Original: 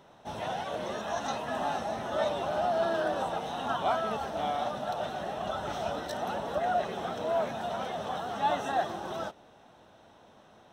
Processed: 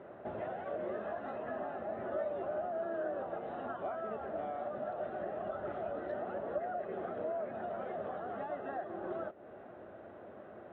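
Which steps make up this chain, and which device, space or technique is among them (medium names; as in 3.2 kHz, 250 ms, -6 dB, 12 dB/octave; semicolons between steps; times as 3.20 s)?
bass amplifier (compression 4:1, threshold -45 dBFS, peak gain reduction 18 dB; cabinet simulation 71–2000 Hz, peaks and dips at 150 Hz -5 dB, 370 Hz +8 dB, 590 Hz +6 dB, 920 Hz -9 dB); trim +4.5 dB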